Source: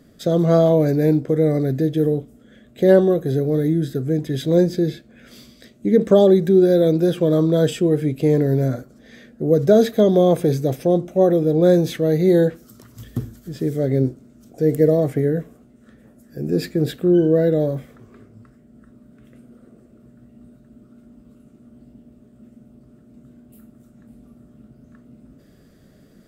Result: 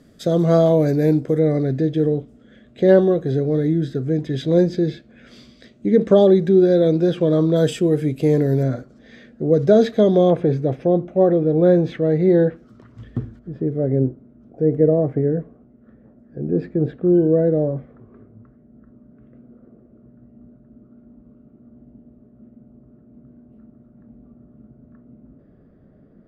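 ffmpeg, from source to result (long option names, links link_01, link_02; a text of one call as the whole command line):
ffmpeg -i in.wav -af "asetnsamples=nb_out_samples=441:pad=0,asendcmd='1.39 lowpass f 4900;7.56 lowpass f 11000;8.63 lowpass f 4800;10.3 lowpass f 2200;13.39 lowpass f 1100',lowpass=11000" out.wav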